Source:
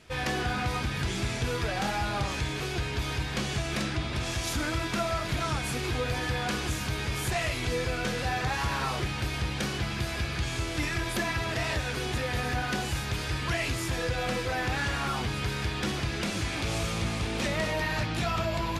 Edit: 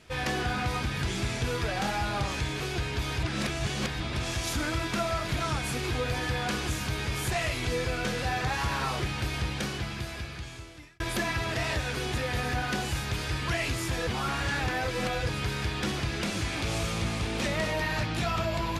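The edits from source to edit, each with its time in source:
3.23–4 reverse
9.42–11 fade out
14.07–15.29 reverse

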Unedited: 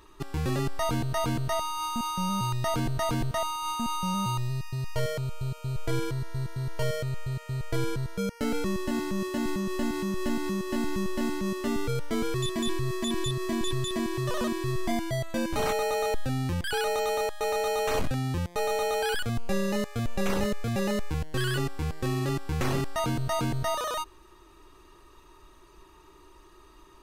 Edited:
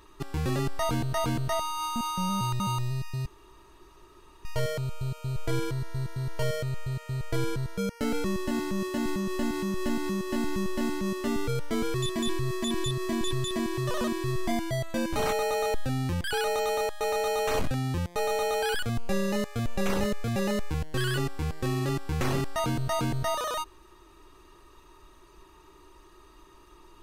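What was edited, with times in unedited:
2.6–4.19 cut
4.85 insert room tone 1.19 s

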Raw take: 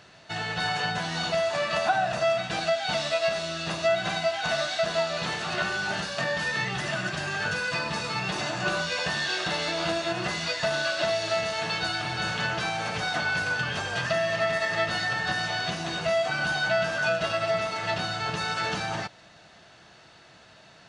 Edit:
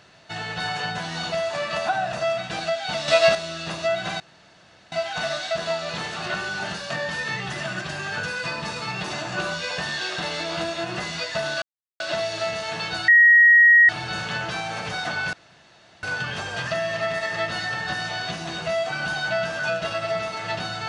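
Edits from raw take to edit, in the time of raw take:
3.08–3.35 gain +9 dB
4.2 insert room tone 0.72 s
10.9 insert silence 0.38 s
11.98 add tone 1890 Hz -9.5 dBFS 0.81 s
13.42 insert room tone 0.70 s

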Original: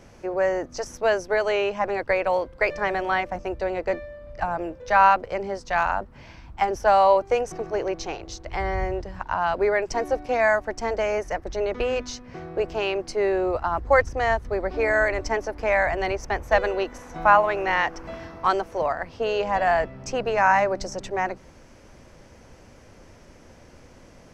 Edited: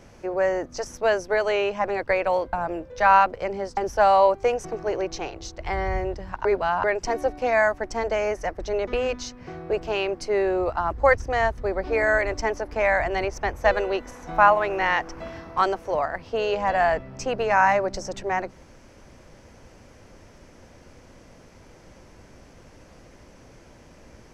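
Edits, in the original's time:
2.53–4.43 cut
5.67–6.64 cut
9.32–9.71 reverse

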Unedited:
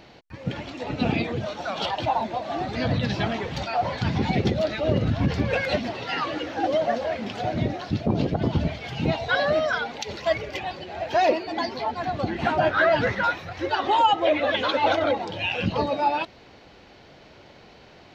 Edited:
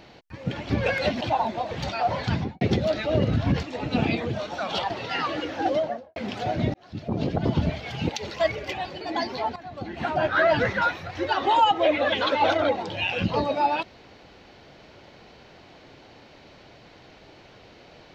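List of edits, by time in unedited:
0.7–1.97 swap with 5.37–5.88
2.47–3.45 cut
4.05–4.35 studio fade out
6.65–7.14 studio fade out
7.72–8.39 fade in
9.07–9.95 cut
10.87–11.43 cut
11.98–12.93 fade in, from -16 dB

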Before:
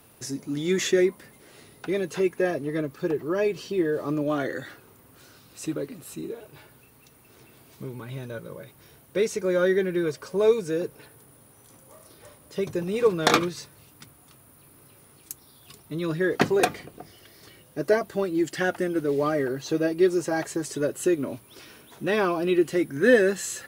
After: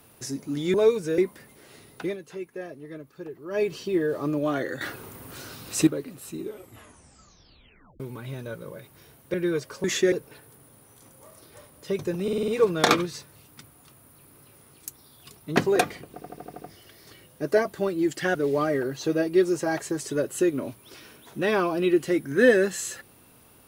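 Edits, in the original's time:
0.74–1.02 swap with 10.36–10.8
1.88–3.45 dip -12 dB, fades 0.13 s
4.65–5.71 gain +11 dB
6.23 tape stop 1.61 s
9.18–9.86 cut
12.91 stutter 0.05 s, 6 plays
15.99–16.4 cut
16.97 stutter 0.08 s, 7 plays
18.71–19 cut

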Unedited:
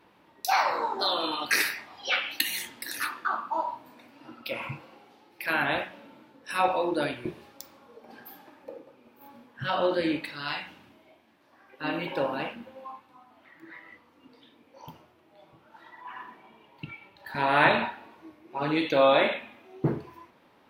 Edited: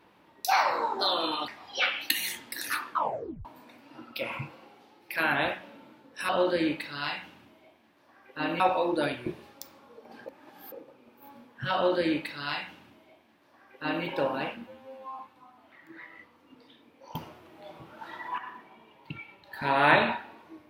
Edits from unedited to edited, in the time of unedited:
1.48–1.78 cut
3.2 tape stop 0.55 s
8.25–8.71 reverse
9.73–12.04 copy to 6.59
12.66–12.92 stretch 2×
14.88–16.11 gain +9 dB

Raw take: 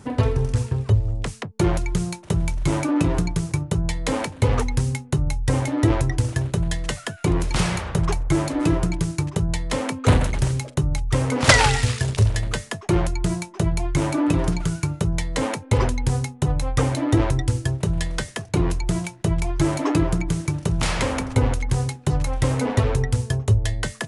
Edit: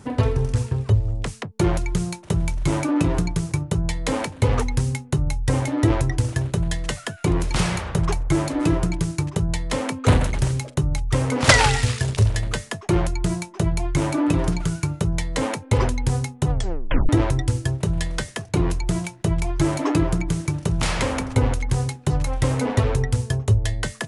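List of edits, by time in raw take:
16.51 tape stop 0.58 s

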